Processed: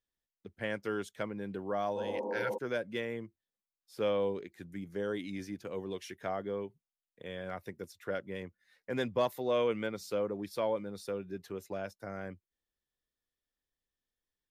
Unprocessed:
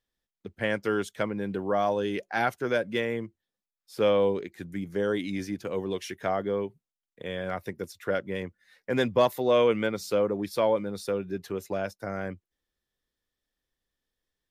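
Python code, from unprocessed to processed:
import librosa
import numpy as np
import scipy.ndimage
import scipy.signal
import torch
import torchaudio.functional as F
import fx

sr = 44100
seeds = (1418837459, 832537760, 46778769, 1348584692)

y = fx.spec_repair(x, sr, seeds[0], start_s=1.99, length_s=0.56, low_hz=200.0, high_hz=1300.0, source='before')
y = y * librosa.db_to_amplitude(-8.0)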